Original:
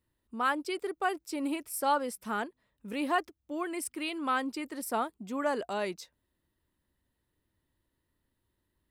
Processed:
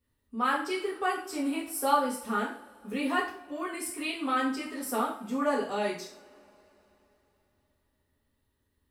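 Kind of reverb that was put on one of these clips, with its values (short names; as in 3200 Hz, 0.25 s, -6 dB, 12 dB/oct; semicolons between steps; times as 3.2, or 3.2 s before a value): two-slope reverb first 0.46 s, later 3.8 s, from -28 dB, DRR -5.5 dB; gain -4 dB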